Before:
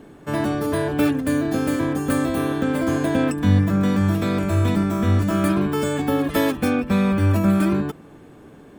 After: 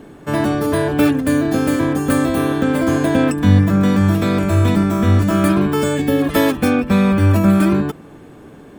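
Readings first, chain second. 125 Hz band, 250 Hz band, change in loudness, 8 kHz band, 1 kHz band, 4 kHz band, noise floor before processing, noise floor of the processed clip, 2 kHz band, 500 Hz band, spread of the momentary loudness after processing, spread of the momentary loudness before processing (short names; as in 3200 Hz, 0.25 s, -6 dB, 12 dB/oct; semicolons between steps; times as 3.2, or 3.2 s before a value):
+5.0 dB, +5.0 dB, +5.0 dB, +5.0 dB, +5.0 dB, +5.0 dB, -45 dBFS, -40 dBFS, +5.0 dB, +5.0 dB, 4 LU, 4 LU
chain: spectral gain 5.95–6.22, 660–1600 Hz -8 dB; gain +5 dB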